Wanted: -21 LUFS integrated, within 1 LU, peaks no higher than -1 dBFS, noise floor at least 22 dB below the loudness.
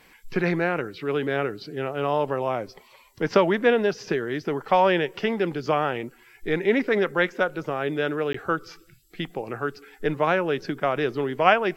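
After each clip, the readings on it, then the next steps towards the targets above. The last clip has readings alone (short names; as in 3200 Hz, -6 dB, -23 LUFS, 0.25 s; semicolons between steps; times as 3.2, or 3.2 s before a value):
dropouts 1; longest dropout 14 ms; loudness -25.0 LUFS; peak -2.0 dBFS; loudness target -21.0 LUFS
-> interpolate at 8.33, 14 ms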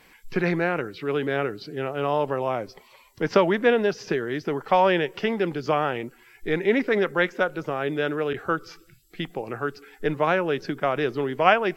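dropouts 0; loudness -25.0 LUFS; peak -2.0 dBFS; loudness target -21.0 LUFS
-> gain +4 dB; limiter -1 dBFS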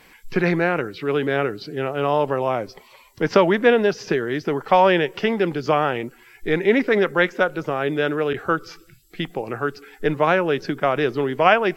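loudness -21.0 LUFS; peak -1.0 dBFS; noise floor -51 dBFS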